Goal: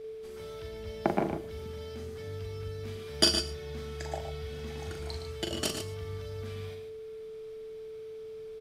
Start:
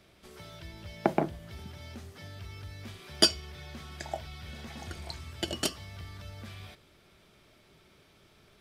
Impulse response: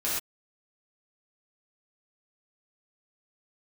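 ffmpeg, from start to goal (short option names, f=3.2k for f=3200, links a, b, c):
-filter_complex "[0:a]asplit=2[a][b];[b]bass=f=250:g=15,treble=f=4k:g=6[c];[1:a]atrim=start_sample=2205[d];[c][d]afir=irnorm=-1:irlink=0,volume=-23dB[e];[a][e]amix=inputs=2:normalize=0,aeval=exprs='val(0)+0.0126*sin(2*PI*440*n/s)':c=same,aecho=1:1:41|115|147:0.501|0.335|0.335,volume=-3dB"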